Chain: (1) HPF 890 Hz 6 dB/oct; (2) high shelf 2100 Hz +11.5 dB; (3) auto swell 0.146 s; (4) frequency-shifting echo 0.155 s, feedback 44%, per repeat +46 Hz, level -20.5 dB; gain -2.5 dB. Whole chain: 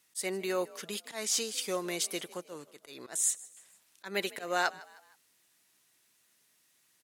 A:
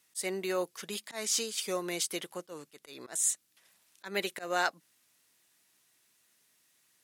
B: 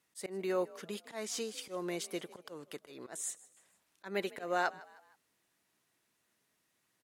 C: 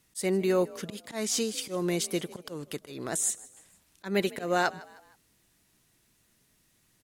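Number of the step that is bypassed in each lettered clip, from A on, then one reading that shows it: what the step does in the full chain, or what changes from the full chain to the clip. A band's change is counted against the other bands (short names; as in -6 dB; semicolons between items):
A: 4, echo-to-direct -19.5 dB to none; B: 2, 8 kHz band -9.0 dB; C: 1, 125 Hz band +11.5 dB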